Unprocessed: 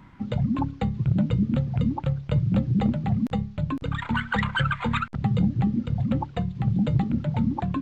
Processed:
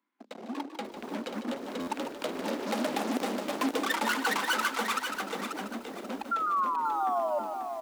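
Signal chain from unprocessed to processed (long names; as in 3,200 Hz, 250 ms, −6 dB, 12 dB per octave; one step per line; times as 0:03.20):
turntable brake at the end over 1.51 s
source passing by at 0:03.21, 11 m/s, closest 2.6 metres
dynamic equaliser 640 Hz, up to +7 dB, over −50 dBFS, Q 1.2
in parallel at −7 dB: fuzz pedal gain 41 dB, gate −49 dBFS
on the sum: automatic gain control gain up to 5 dB
sound drawn into the spectrogram fall, 0:06.31–0:07.39, 580–1,400 Hz −20 dBFS
brickwall limiter −16 dBFS, peak gain reduction 11 dB
Butterworth high-pass 240 Hz 48 dB per octave
high-shelf EQ 3,800 Hz +8 dB
on a send: echo with shifted repeats 150 ms, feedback 48%, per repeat +31 Hz, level −10 dB
on the sum: buffer that repeats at 0:01.79, samples 512, times 6
feedback echo at a low word length 537 ms, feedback 35%, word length 7 bits, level −6.5 dB
level −7.5 dB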